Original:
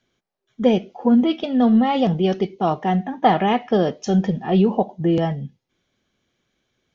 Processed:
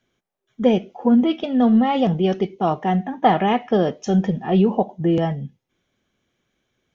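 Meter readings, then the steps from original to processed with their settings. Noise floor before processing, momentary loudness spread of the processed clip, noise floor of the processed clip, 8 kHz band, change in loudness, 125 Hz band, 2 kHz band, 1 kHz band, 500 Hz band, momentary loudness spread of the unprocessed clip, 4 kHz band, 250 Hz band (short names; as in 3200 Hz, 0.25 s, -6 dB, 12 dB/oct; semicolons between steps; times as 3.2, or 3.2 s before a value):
-78 dBFS, 5 LU, -78 dBFS, n/a, 0.0 dB, 0.0 dB, -0.5 dB, 0.0 dB, 0.0 dB, 5 LU, -1.5 dB, 0.0 dB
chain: bell 4500 Hz -6 dB 0.52 oct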